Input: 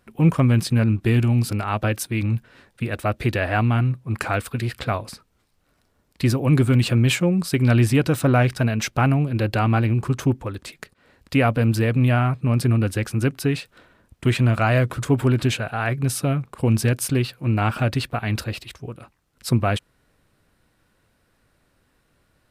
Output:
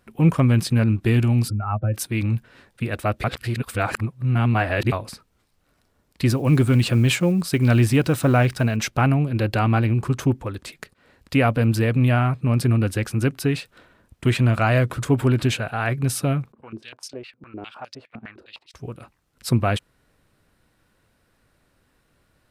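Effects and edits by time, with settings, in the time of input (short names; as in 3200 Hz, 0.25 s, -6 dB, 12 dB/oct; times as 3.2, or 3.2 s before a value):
1.48–1.94 spectral contrast raised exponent 2.1
3.24–4.92 reverse
6.3–8.77 block floating point 7-bit
16.52–18.74 stepped band-pass 9.8 Hz 240–5300 Hz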